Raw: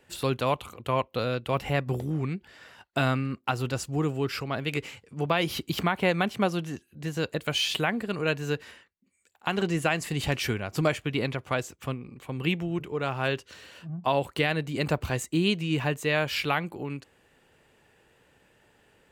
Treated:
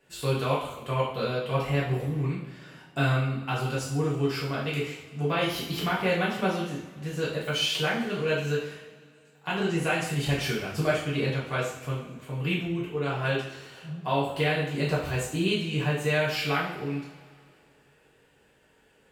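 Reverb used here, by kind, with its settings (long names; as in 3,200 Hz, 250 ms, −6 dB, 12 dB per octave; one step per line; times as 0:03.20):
coupled-rooms reverb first 0.58 s, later 2.4 s, from −18 dB, DRR −7 dB
level −8 dB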